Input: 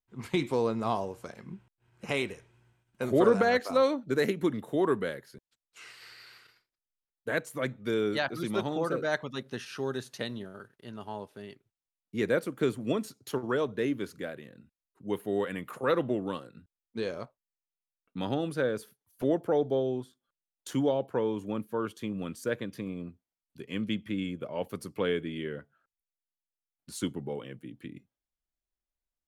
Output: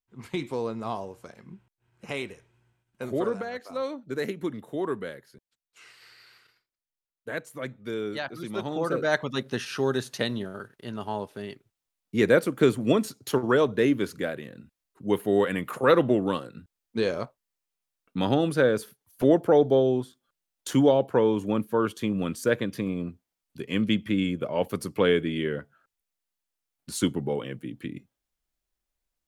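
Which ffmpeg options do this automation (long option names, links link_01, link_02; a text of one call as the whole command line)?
ffmpeg -i in.wav -af "volume=16dB,afade=type=out:start_time=3.07:duration=0.43:silence=0.375837,afade=type=in:start_time=3.5:duration=0.73:silence=0.398107,afade=type=in:start_time=8.51:duration=0.88:silence=0.298538" out.wav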